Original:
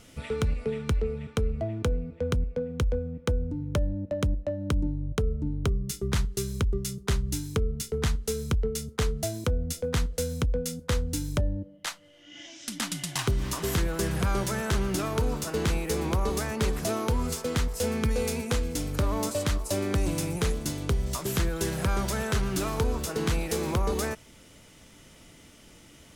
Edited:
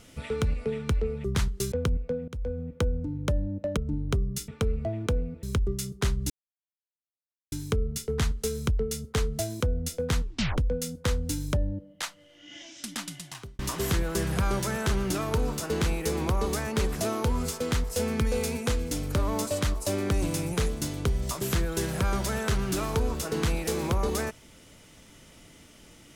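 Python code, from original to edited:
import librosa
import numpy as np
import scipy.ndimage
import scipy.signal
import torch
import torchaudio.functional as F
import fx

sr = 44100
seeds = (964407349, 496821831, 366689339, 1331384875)

y = fx.edit(x, sr, fx.swap(start_s=1.24, length_s=0.95, other_s=6.01, other_length_s=0.48),
    fx.fade_in_from(start_s=2.75, length_s=0.32, floor_db=-20.0),
    fx.cut(start_s=4.24, length_s=1.06),
    fx.insert_silence(at_s=7.36, length_s=1.22),
    fx.tape_stop(start_s=10.04, length_s=0.38),
    fx.fade_out_span(start_s=12.5, length_s=0.93), tone=tone)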